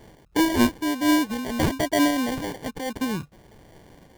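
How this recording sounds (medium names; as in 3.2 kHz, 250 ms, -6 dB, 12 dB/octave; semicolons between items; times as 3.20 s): phasing stages 2, 1.1 Hz, lowest notch 560–2400 Hz; aliases and images of a low sample rate 1.3 kHz, jitter 0%; random flutter of the level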